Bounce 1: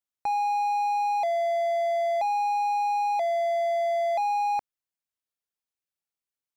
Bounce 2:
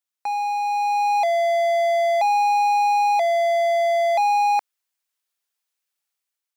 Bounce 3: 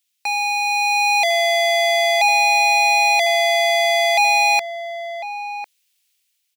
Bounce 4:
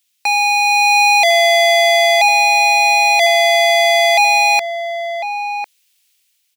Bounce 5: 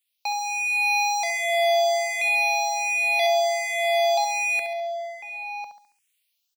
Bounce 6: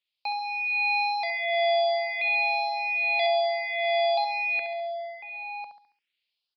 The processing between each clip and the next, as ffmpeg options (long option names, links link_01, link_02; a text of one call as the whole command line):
ffmpeg -i in.wav -af "dynaudnorm=framelen=610:gausssize=3:maxgain=6dB,highpass=frequency=1000:poles=1,volume=5dB" out.wav
ffmpeg -i in.wav -filter_complex "[0:a]highshelf=frequency=1800:width_type=q:width=1.5:gain=12.5,asplit=2[link_01][link_02];[link_02]adelay=1050,volume=-9dB,highshelf=frequency=4000:gain=-23.6[link_03];[link_01][link_03]amix=inputs=2:normalize=0,volume=1.5dB" out.wav
ffmpeg -i in.wav -af "alimiter=limit=-13dB:level=0:latency=1:release=43,volume=6.5dB" out.wav
ffmpeg -i in.wav -filter_complex "[0:a]asplit=2[link_01][link_02];[link_02]aecho=0:1:69|138|207|276|345:0.376|0.162|0.0695|0.0299|0.0128[link_03];[link_01][link_03]amix=inputs=2:normalize=0,asplit=2[link_04][link_05];[link_05]afreqshift=1.3[link_06];[link_04][link_06]amix=inputs=2:normalize=1,volume=-9dB" out.wav
ffmpeg -i in.wav -af "aresample=11025,aresample=44100,volume=-3dB" out.wav